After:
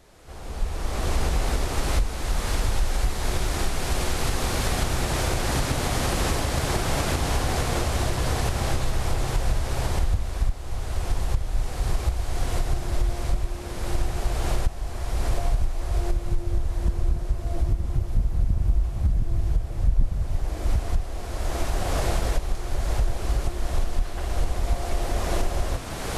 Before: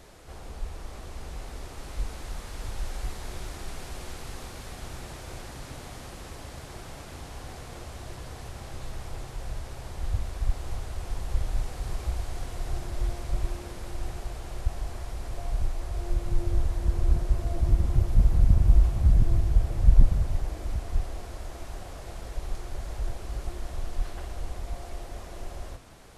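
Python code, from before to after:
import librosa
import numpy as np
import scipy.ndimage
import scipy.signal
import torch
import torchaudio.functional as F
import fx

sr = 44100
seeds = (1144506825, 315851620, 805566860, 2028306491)

y = fx.recorder_agc(x, sr, target_db=-9.5, rise_db_per_s=22.0, max_gain_db=30)
y = y * librosa.db_to_amplitude(-4.5)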